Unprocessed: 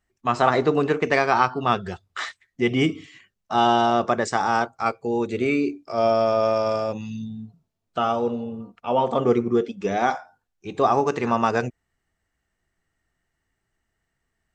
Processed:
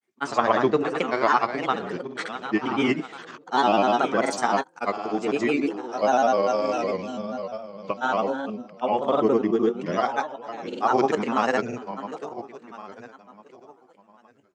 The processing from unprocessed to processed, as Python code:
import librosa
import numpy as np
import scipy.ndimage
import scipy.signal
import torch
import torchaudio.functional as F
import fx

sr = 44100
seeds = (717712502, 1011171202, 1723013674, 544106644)

y = fx.reverse_delay_fb(x, sr, ms=685, feedback_pct=43, wet_db=-12)
y = scipy.signal.sosfilt(scipy.signal.butter(4, 170.0, 'highpass', fs=sr, output='sos'), y)
y = fx.granulator(y, sr, seeds[0], grain_ms=100.0, per_s=20.0, spray_ms=100.0, spread_st=3)